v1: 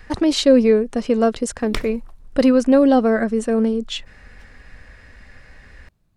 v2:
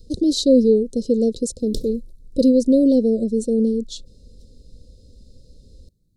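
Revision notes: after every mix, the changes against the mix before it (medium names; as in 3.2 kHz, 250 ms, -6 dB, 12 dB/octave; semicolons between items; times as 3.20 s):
master: add Chebyshev band-stop 520–3900 Hz, order 4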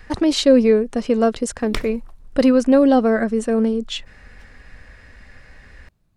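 master: remove Chebyshev band-stop 520–3900 Hz, order 4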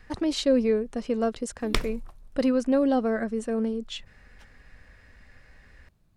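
speech -9.0 dB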